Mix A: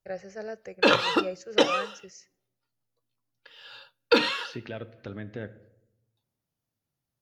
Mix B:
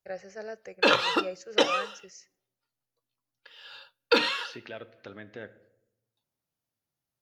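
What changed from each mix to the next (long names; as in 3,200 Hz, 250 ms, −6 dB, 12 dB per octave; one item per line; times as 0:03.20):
second voice: add low-shelf EQ 200 Hz −8 dB
master: add low-shelf EQ 320 Hz −7.5 dB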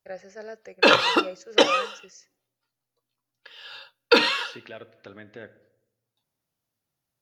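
background +5.0 dB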